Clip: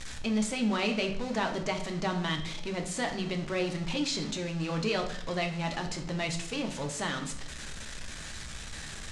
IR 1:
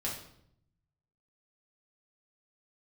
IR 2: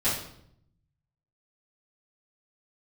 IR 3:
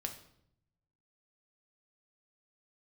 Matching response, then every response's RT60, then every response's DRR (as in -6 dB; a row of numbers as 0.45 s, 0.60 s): 3; 0.70 s, 0.70 s, 0.70 s; -5.5 dB, -14.5 dB, 3.5 dB